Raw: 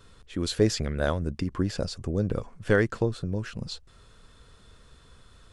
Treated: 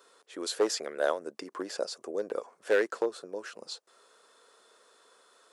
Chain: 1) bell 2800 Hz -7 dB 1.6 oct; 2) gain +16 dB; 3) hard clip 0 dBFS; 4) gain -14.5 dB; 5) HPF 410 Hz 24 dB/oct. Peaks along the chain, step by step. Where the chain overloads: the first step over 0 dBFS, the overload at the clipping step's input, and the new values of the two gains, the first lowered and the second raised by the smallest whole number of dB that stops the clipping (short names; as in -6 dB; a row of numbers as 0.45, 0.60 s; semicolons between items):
-9.0, +7.0, 0.0, -14.5, -14.0 dBFS; step 2, 7.0 dB; step 2 +9 dB, step 4 -7.5 dB